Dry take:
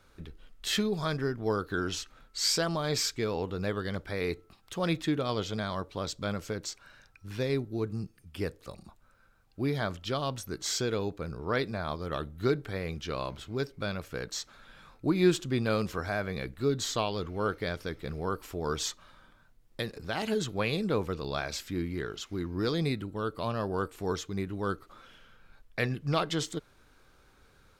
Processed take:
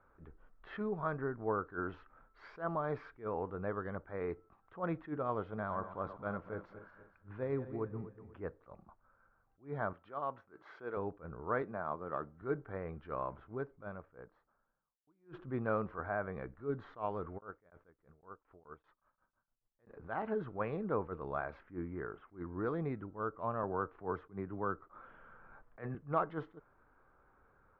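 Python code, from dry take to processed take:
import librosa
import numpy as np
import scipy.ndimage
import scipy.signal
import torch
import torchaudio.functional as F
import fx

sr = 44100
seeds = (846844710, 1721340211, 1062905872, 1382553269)

y = fx.reverse_delay_fb(x, sr, ms=122, feedback_pct=61, wet_db=-11.5, at=(5.45, 8.4))
y = fx.highpass(y, sr, hz=450.0, slope=6, at=(9.93, 10.97))
y = fx.highpass(y, sr, hz=130.0, slope=12, at=(11.62, 12.42))
y = fx.studio_fade_out(y, sr, start_s=13.17, length_s=1.9)
y = fx.tremolo_decay(y, sr, direction='decaying', hz=fx.line((17.37, 3.1), (19.88, 8.3)), depth_db=31, at=(17.37, 19.88), fade=0.02)
y = fx.savgol(y, sr, points=25, at=(21.63, 22.29))
y = fx.band_squash(y, sr, depth_pct=40, at=(23.63, 25.95))
y = scipy.signal.sosfilt(scipy.signal.butter(4, 1300.0, 'lowpass', fs=sr, output='sos'), y)
y = fx.tilt_shelf(y, sr, db=-6.5, hz=690.0)
y = fx.attack_slew(y, sr, db_per_s=240.0)
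y = y * librosa.db_to_amplitude(-3.0)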